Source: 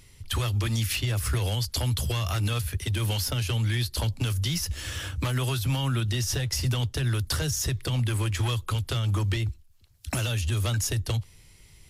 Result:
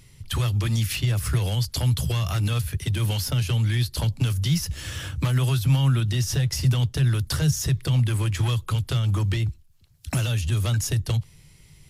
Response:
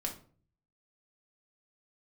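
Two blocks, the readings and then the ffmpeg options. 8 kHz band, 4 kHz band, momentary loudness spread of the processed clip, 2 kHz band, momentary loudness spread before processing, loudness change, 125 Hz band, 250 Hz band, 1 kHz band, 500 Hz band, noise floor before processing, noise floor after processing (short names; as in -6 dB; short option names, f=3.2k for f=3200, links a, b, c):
0.0 dB, 0.0 dB, 5 LU, 0.0 dB, 4 LU, +3.5 dB, +4.5 dB, +4.5 dB, 0.0 dB, +0.5 dB, -54 dBFS, -52 dBFS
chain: -af "equalizer=f=150:w=2.3:g=10.5"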